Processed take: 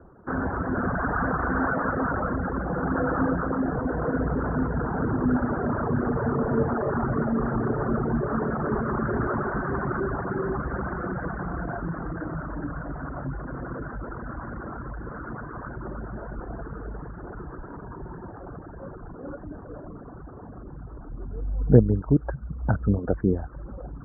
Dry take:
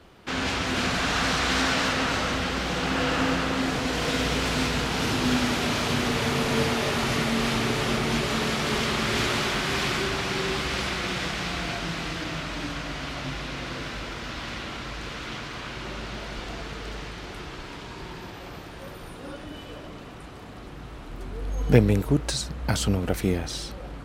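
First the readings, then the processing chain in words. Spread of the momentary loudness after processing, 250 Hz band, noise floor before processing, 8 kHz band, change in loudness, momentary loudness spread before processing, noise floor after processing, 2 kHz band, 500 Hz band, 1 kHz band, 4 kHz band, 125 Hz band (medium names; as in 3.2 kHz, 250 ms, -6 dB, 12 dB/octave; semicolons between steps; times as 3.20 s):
16 LU, +1.5 dB, -41 dBFS, under -40 dB, -1.0 dB, 16 LU, -42 dBFS, -6.0 dB, +1.0 dB, -0.5 dB, under -40 dB, +2.0 dB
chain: resonances exaggerated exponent 1.5; reverb removal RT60 0.7 s; steep low-pass 1.6 kHz 72 dB/octave; trim +2.5 dB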